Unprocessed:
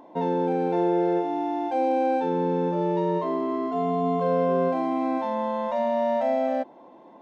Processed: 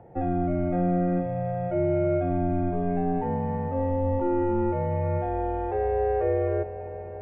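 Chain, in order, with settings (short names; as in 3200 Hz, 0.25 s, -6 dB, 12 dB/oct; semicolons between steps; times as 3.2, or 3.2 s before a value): mistuned SSB -170 Hz 160–2500 Hz; on a send: multi-head echo 0.197 s, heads all three, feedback 69%, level -20.5 dB; on the sum: gain -1 dB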